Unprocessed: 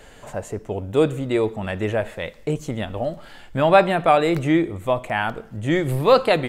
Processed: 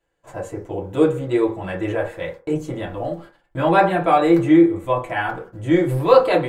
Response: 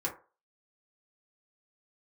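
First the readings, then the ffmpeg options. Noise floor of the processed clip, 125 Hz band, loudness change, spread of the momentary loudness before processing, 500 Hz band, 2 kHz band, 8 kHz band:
−64 dBFS, 0.0 dB, +2.5 dB, 14 LU, +1.0 dB, −0.5 dB, can't be measured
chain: -filter_complex "[0:a]agate=range=-27dB:threshold=-38dB:ratio=16:detection=peak[link_01];[1:a]atrim=start_sample=2205[link_02];[link_01][link_02]afir=irnorm=-1:irlink=0,volume=-4.5dB"

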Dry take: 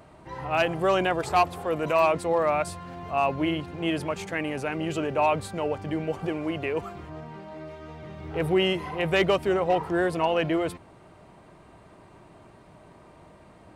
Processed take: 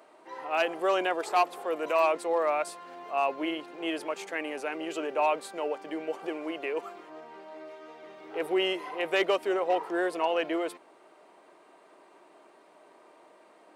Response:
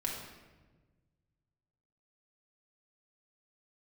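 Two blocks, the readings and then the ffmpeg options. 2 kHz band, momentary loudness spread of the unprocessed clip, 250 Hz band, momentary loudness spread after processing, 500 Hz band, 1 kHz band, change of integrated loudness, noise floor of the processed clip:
−3.0 dB, 18 LU, −6.5 dB, 19 LU, −3.5 dB, −3.0 dB, −3.5 dB, −58 dBFS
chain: -af "highpass=frequency=320:width=0.5412,highpass=frequency=320:width=1.3066,volume=-3dB"

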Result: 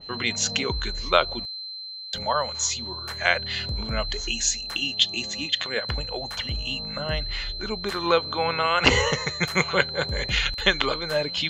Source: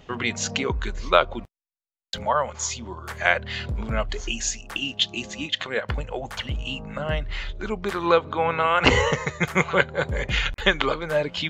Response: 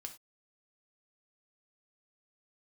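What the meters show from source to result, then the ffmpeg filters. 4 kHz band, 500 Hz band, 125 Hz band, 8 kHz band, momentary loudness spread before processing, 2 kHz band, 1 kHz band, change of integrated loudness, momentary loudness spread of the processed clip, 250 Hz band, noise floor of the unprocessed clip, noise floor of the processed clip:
+4.5 dB, −2.5 dB, −2.5 dB, +3.0 dB, 10 LU, −1.0 dB, −2.5 dB, 0.0 dB, 8 LU, −2.5 dB, below −85 dBFS, −36 dBFS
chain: -af "aeval=exprs='val(0)+0.02*sin(2*PI*4100*n/s)':channel_layout=same,adynamicequalizer=threshold=0.0178:dfrequency=2500:dqfactor=0.7:tfrequency=2500:tqfactor=0.7:attack=5:release=100:ratio=0.375:range=3:mode=boostabove:tftype=highshelf,volume=-2.5dB"

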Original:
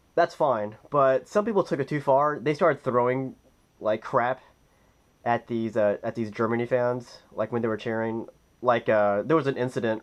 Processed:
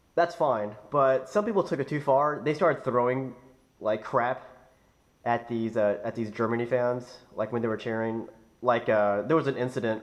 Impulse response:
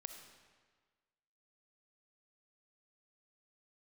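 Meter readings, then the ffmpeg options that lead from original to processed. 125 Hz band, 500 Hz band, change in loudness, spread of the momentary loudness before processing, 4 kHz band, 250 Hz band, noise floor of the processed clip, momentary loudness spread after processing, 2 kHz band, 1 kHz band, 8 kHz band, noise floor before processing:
−2.0 dB, −2.0 dB, −2.0 dB, 9 LU, −2.0 dB, −2.0 dB, −64 dBFS, 9 LU, −2.0 dB, −2.0 dB, can't be measured, −63 dBFS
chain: -filter_complex "[0:a]asplit=2[link_01][link_02];[1:a]atrim=start_sample=2205,afade=type=out:start_time=0.43:duration=0.01,atrim=end_sample=19404,adelay=62[link_03];[link_02][link_03]afir=irnorm=-1:irlink=0,volume=-11dB[link_04];[link_01][link_04]amix=inputs=2:normalize=0,volume=-2dB"

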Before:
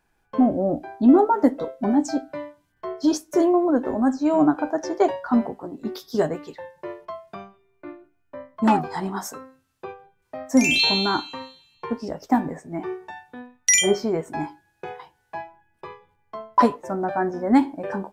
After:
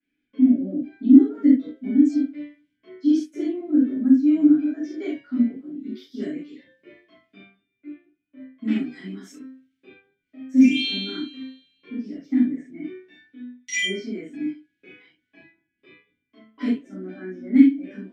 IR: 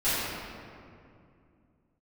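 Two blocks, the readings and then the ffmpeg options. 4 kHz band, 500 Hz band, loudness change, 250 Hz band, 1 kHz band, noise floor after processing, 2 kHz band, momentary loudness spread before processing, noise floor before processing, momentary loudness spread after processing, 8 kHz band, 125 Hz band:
−5.0 dB, −11.5 dB, +0.5 dB, +3.0 dB, below −25 dB, −78 dBFS, −5.0 dB, 22 LU, −68 dBFS, 20 LU, −15.0 dB, can't be measured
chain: -filter_complex "[1:a]atrim=start_sample=2205,atrim=end_sample=3969[link_01];[0:a][link_01]afir=irnorm=-1:irlink=0,crystalizer=i=0.5:c=0,adynamicequalizer=threshold=0.0158:dfrequency=8400:dqfactor=1.1:tfrequency=8400:tqfactor=1.1:attack=5:release=100:ratio=0.375:range=3:mode=boostabove:tftype=bell,asplit=3[link_02][link_03][link_04];[link_02]bandpass=frequency=270:width_type=q:width=8,volume=0dB[link_05];[link_03]bandpass=frequency=2290:width_type=q:width=8,volume=-6dB[link_06];[link_04]bandpass=frequency=3010:width_type=q:width=8,volume=-9dB[link_07];[link_05][link_06][link_07]amix=inputs=3:normalize=0,volume=-2.5dB"

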